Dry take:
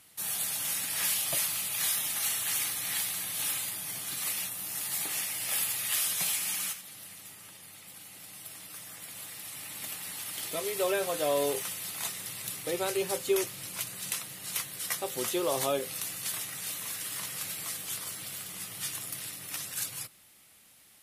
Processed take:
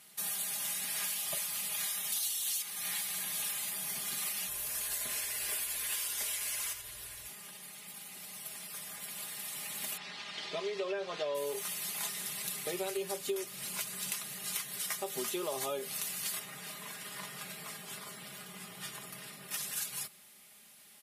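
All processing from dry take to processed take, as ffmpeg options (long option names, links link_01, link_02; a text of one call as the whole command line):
ffmpeg -i in.wav -filter_complex "[0:a]asettb=1/sr,asplit=3[link_01][link_02][link_03];[link_01]atrim=end=2.124[link_04];[link_02]atrim=start=2.12:end=2.62,asetpts=PTS-STARTPTS,afade=type=in:duration=0.004:curve=qsin,afade=type=out:start_time=0.496:duration=0.004:curve=qsin,highpass=120,highshelf=frequency=2700:width_type=q:width=1.5:gain=9[link_05];[link_03]atrim=start=2.616[link_06];[link_04][link_05]acrossfade=duration=0.004:curve1=hsin:curve2=qsin[link_07];[link_07][link_06]acrossfade=duration=0.004:curve1=qsin:curve2=hsin,asettb=1/sr,asplit=3[link_08][link_09][link_10];[link_08]atrim=end=4.484[link_11];[link_09]atrim=start=4.48:end=7.28,asetpts=PTS-STARTPTS,afade=type=in:duration=0.004:curve=qsin,afade=type=out:start_time=2.796:duration=0.004:curve=qsin,aeval=exprs='val(0)+0.00355*(sin(2*PI*60*n/s)+sin(2*PI*2*60*n/s)/2+sin(2*PI*3*60*n/s)/3+sin(2*PI*4*60*n/s)/4+sin(2*PI*5*60*n/s)/5)':channel_layout=same,afreqshift=-170[link_12];[link_10]atrim=start=7.276[link_13];[link_11][link_12]acrossfade=duration=0.004:curve1=hsin:curve2=qsin[link_14];[link_14][link_13]acrossfade=duration=0.004:curve1=qsin:curve2=hsin,asettb=1/sr,asplit=3[link_15][link_16][link_17];[link_15]atrim=end=9.974[link_18];[link_16]atrim=start=9.97:end=11.35,asetpts=PTS-STARTPTS,afade=type=in:duration=0.004:curve=qsin,afade=type=out:start_time=1.376:duration=0.004:curve=qsin,lowpass=frequency=5100:width=0.5412,lowpass=frequency=5100:width=1.3066,lowshelf=frequency=100:gain=-9.5[link_19];[link_17]atrim=start=11.346[link_20];[link_18][link_19]acrossfade=duration=0.004:curve1=hsin:curve2=qsin[link_21];[link_21][link_20]acrossfade=duration=0.004:curve1=qsin:curve2=hsin,asettb=1/sr,asplit=3[link_22][link_23][link_24];[link_22]atrim=end=16.394[link_25];[link_23]atrim=start=16.39:end=19.51,asetpts=PTS-STARTPTS,afade=type=in:duration=0.004:curve=qsin,afade=type=out:start_time=3.116:duration=0.004:curve=qsin,highshelf=frequency=3100:gain=-12,bandreject=frequency=6200:width=20[link_26];[link_24]atrim=start=19.506[link_27];[link_25][link_26]acrossfade=duration=0.004:curve1=hsin:curve2=qsin[link_28];[link_28][link_27]acrossfade=duration=0.004:curve1=qsin:curve2=hsin,highpass=frequency=120:poles=1,aecho=1:1:4.9:0.75,acompressor=threshold=-32dB:ratio=6,volume=-1dB" out.wav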